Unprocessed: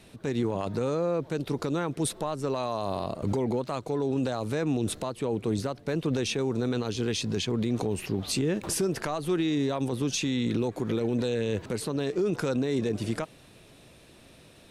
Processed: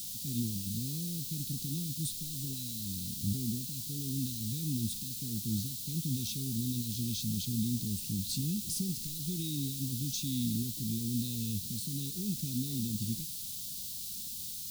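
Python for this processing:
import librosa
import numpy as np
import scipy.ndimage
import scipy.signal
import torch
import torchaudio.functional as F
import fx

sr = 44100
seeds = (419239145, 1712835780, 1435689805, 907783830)

y = fx.quant_dither(x, sr, seeds[0], bits=6, dither='triangular')
y = scipy.signal.sosfilt(scipy.signal.ellip(3, 1.0, 80, [220.0, 3800.0], 'bandstop', fs=sr, output='sos'), y)
y = fx.hpss(y, sr, part='harmonic', gain_db=5)
y = y * 10.0 ** (-6.5 / 20.0)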